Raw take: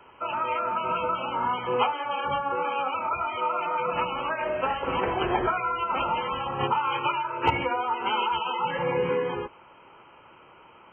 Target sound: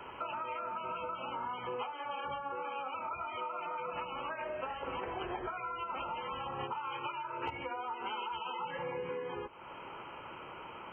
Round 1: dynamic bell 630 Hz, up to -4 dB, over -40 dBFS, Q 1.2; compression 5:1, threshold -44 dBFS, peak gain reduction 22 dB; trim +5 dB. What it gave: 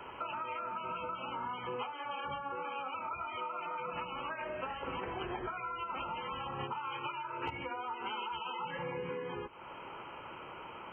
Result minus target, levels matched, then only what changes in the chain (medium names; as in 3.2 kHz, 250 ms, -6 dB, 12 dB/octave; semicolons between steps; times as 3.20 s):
125 Hz band +3.5 dB
change: dynamic bell 170 Hz, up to -4 dB, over -40 dBFS, Q 1.2